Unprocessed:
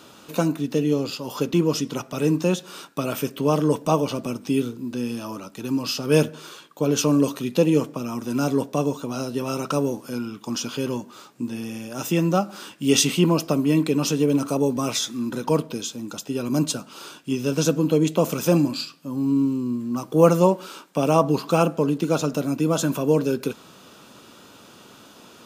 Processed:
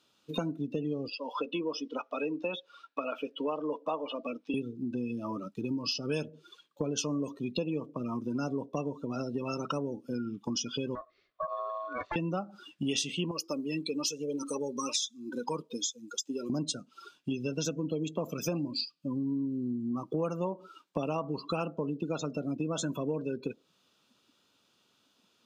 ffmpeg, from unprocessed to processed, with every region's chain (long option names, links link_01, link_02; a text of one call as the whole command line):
ffmpeg -i in.wav -filter_complex "[0:a]asettb=1/sr,asplit=3[link_01][link_02][link_03];[link_01]atrim=end=1.084[link_04];[link_02]atrim=start=1.08:end=4.54,asetpts=PTS-STARTPTS,afade=type=in:duration=0.004:curve=qsin,afade=type=out:start_time=3.456:duration=0.004:curve=qsin,acrossover=split=290 4700:gain=0.0631 1 0.2[link_05][link_06][link_07];[link_05][link_06][link_07]amix=inputs=3:normalize=0,bandreject=frequency=380:width=5.3[link_08];[link_03]atrim=start=4.536[link_09];[link_04][link_08]acrossfade=duration=0.004:curve1=hsin:curve2=qsin[link_10];[link_10][link_09]acrossfade=duration=0.004:curve1=qsin:curve2=hsin,asettb=1/sr,asplit=3[link_11][link_12][link_13];[link_11]atrim=end=10.954[link_14];[link_12]atrim=start=10.95:end=12.16,asetpts=PTS-STARTPTS,afade=type=in:duration=0.004:curve=qsin,afade=type=out:start_time=1.206:duration=0.004:curve=qsin,lowpass=frequency=3700:width=0.5412,lowpass=frequency=3700:width=1.3066,aeval=exprs='0.0708*(abs(mod(val(0)/0.0708+3,4)-2)-1)':channel_layout=same,aeval=exprs='val(0)*sin(2*PI*870*n/s)':channel_layout=same[link_15];[link_13]atrim=start=12.156[link_16];[link_14][link_15]acrossfade=duration=0.004:curve1=hsin:curve2=qsin[link_17];[link_17][link_16]acrossfade=duration=0.004:curve1=qsin:curve2=hsin,asettb=1/sr,asplit=3[link_18][link_19][link_20];[link_18]atrim=end=13.314[link_21];[link_19]atrim=start=13.31:end=16.5,asetpts=PTS-STARTPTS,afade=type=in:duration=0.004:curve=qsin,afade=type=out:start_time=3.186:duration=0.004:curve=qsin,asuperstop=centerf=680:order=4:qfactor=5.6,bass=frequency=250:gain=-9,treble=frequency=4000:gain=8,flanger=delay=1.2:depth=4.6:regen=40:speed=1.1:shape=triangular[link_22];[link_20]atrim=start=16.496[link_23];[link_21][link_22]acrossfade=duration=0.004:curve1=hsin:curve2=qsin[link_24];[link_24][link_23]acrossfade=duration=0.004:curve1=qsin:curve2=hsin,afftdn=noise_reduction=28:noise_floor=-30,equalizer=frequency=3800:width=0.75:gain=9,acompressor=threshold=-33dB:ratio=5,volume=1.5dB" out.wav